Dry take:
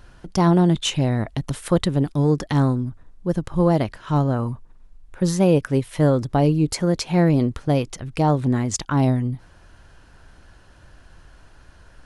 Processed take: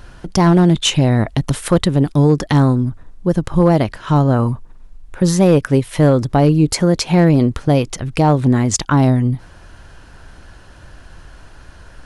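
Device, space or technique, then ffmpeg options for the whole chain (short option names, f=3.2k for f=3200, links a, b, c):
clipper into limiter: -af "asoftclip=type=hard:threshold=-9.5dB,alimiter=limit=-12.5dB:level=0:latency=1:release=211,volume=8.5dB"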